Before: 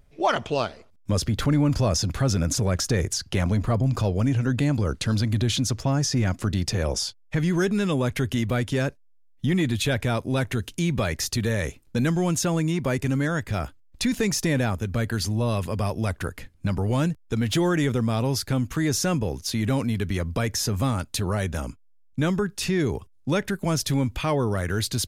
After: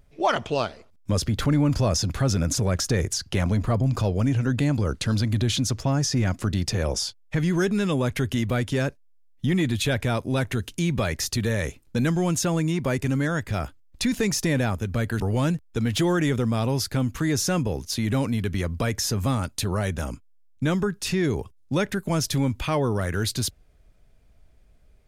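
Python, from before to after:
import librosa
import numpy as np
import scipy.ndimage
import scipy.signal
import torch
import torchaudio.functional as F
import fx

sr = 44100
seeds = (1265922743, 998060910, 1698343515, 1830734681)

y = fx.edit(x, sr, fx.cut(start_s=15.2, length_s=1.56), tone=tone)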